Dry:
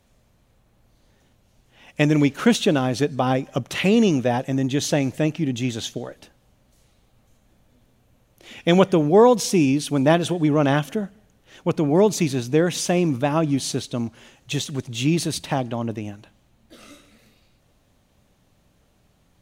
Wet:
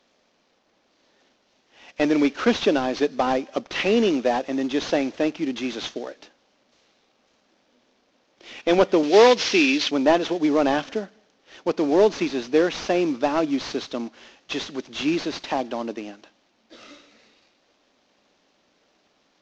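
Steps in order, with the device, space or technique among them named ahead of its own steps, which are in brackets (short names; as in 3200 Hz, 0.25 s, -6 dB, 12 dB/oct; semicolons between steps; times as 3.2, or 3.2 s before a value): early wireless headset (HPF 260 Hz 24 dB/oct; CVSD 32 kbps); 9.03–9.91 weighting filter D; gain +1 dB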